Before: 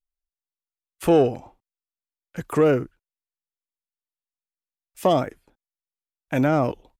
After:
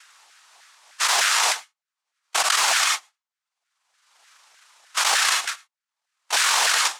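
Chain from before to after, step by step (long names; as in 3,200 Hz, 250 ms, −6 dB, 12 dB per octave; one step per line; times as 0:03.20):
pitch glide at a constant tempo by +11.5 semitones starting unshifted
downward expander −55 dBFS
spectral tilt +2 dB per octave
upward compression, threshold −52 dBFS
cochlear-implant simulation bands 1
harmonic generator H 6 −32 dB, 8 −26 dB, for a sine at −5 dBFS
auto-filter high-pass saw down 3.3 Hz 740–1,600 Hz
on a send at −21 dB: convolution reverb, pre-delay 46 ms
on the sum: envelope flattener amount 100%
level −5 dB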